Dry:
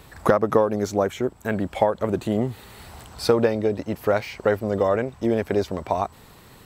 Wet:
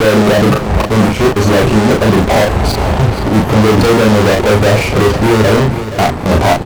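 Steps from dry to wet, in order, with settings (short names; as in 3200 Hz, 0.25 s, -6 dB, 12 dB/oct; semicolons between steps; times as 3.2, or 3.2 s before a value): slices in reverse order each 0.272 s, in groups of 3; expander -43 dBFS; limiter -17.5 dBFS, peak gain reduction 11.5 dB; running mean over 25 samples; fuzz box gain 46 dB, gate -50 dBFS; doubler 37 ms -2.5 dB; feedback echo 0.475 s, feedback 44%, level -12 dB; gain +3.5 dB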